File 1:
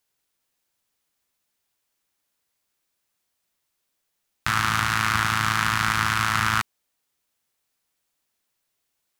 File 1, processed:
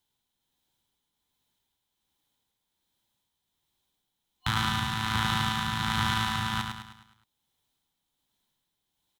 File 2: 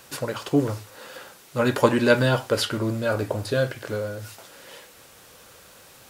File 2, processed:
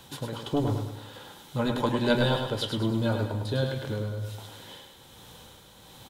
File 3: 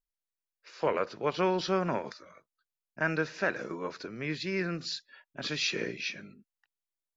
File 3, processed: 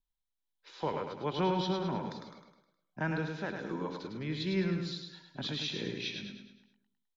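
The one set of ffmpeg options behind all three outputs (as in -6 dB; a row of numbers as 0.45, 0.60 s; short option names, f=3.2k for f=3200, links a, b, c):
-filter_complex "[0:a]superequalizer=9b=2.24:13b=2.82,asplit=2[a][b];[b]acompressor=threshold=-37dB:ratio=5,volume=-3dB[c];[a][c]amix=inputs=2:normalize=0,asoftclip=type=hard:threshold=-2dB,tremolo=f=1.3:d=0.42,acrossover=split=310[d][e];[d]aeval=exprs='0.178*sin(PI/2*2.24*val(0)/0.178)':c=same[f];[f][e]amix=inputs=2:normalize=0,aecho=1:1:104|208|312|416|520|624:0.531|0.25|0.117|0.0551|0.0259|0.0122,volume=-9dB"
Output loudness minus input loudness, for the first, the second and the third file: -6.0, -5.0, -3.0 LU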